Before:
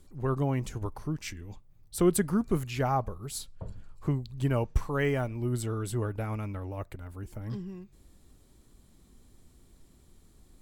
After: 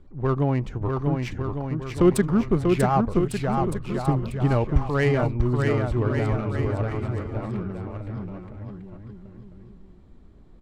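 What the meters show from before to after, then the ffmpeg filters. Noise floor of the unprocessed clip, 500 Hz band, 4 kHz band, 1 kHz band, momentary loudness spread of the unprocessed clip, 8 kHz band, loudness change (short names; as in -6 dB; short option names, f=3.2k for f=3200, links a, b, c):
-60 dBFS, +8.0 dB, +3.5 dB, +8.0 dB, 14 LU, -2.5 dB, +7.0 dB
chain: -af "adynamicsmooth=sensitivity=5:basefreq=2k,aecho=1:1:640|1152|1562|1889|2151:0.631|0.398|0.251|0.158|0.1,volume=6dB"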